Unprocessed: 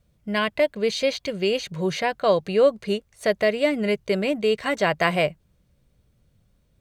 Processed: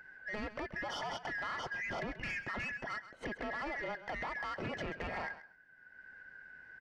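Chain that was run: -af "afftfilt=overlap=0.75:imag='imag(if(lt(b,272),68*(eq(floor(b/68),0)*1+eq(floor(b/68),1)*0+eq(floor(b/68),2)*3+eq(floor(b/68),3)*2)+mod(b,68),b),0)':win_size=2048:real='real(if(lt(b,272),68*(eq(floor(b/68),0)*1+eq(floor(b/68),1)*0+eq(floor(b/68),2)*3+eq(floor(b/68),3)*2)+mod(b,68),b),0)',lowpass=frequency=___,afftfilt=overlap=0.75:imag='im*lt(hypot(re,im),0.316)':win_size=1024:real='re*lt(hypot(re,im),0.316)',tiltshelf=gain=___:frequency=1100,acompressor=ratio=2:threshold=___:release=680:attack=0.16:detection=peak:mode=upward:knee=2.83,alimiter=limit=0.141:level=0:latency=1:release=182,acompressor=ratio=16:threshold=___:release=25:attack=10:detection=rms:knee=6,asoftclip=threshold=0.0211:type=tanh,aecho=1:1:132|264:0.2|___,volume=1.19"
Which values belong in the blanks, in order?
2900, 6.5, 0.0126, 0.0141, 0.0299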